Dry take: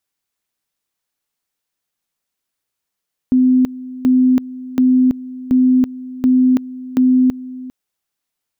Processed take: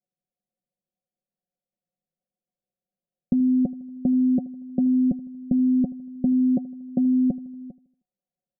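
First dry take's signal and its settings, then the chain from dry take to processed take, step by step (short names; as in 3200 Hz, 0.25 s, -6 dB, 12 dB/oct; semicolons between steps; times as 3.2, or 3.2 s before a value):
two-level tone 255 Hz -8.5 dBFS, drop 18 dB, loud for 0.33 s, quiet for 0.40 s, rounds 6
rippled Chebyshev low-pass 760 Hz, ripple 9 dB; comb 5.5 ms, depth 66%; feedback echo 78 ms, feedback 50%, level -20.5 dB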